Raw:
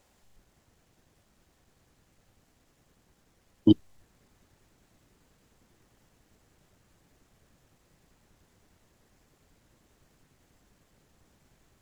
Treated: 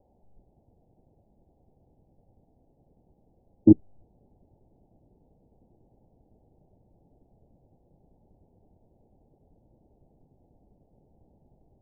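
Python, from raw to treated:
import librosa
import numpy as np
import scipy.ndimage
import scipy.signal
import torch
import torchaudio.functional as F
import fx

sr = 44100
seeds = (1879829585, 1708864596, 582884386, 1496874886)

y = scipy.signal.sosfilt(scipy.signal.butter(12, 850.0, 'lowpass', fs=sr, output='sos'), x)
y = y * 10.0 ** (4.0 / 20.0)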